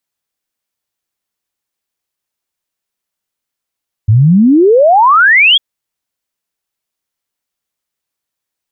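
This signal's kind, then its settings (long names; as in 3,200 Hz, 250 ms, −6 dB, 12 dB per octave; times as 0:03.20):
exponential sine sweep 100 Hz → 3,400 Hz 1.50 s −3.5 dBFS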